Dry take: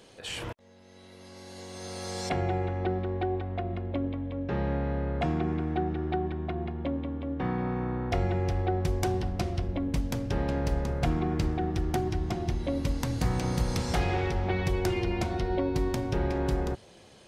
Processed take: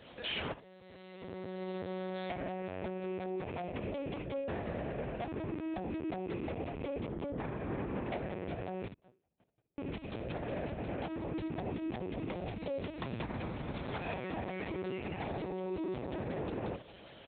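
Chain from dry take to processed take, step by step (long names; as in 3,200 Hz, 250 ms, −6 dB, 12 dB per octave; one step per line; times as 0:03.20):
loose part that buzzes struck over −31 dBFS, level −37 dBFS
0:01.22–0:02.15: spectral tilt −2.5 dB per octave
0:08.86–0:09.79: noise gate −21 dBFS, range −53 dB
ambience of single reflections 16 ms −5 dB, 68 ms −14.5 dB
downward compressor 8 to 1, threshold −31 dBFS, peak gain reduction 12 dB
linear-prediction vocoder at 8 kHz pitch kept
brickwall limiter −29 dBFS, peak gain reduction 8 dB
high-pass filter 46 Hz
low-shelf EQ 86 Hz −11 dB
level +2 dB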